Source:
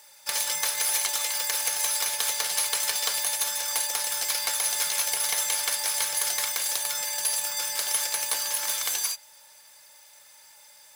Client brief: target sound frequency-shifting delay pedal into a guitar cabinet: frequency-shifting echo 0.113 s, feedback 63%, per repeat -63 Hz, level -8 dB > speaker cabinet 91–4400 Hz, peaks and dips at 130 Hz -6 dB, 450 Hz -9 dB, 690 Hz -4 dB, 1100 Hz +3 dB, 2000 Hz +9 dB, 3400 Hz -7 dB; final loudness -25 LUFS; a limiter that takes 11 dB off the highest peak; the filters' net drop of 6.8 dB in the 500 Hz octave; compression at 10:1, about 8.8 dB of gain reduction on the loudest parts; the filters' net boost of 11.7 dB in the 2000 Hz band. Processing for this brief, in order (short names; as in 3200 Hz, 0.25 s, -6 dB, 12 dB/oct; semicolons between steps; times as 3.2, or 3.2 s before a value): bell 500 Hz -4.5 dB; bell 2000 Hz +8 dB; compressor 10:1, threshold -30 dBFS; limiter -25 dBFS; frequency-shifting echo 0.113 s, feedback 63%, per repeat -63 Hz, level -8 dB; speaker cabinet 91–4400 Hz, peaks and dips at 130 Hz -6 dB, 450 Hz -9 dB, 690 Hz -4 dB, 1100 Hz +3 dB, 2000 Hz +9 dB, 3400 Hz -7 dB; gain +9 dB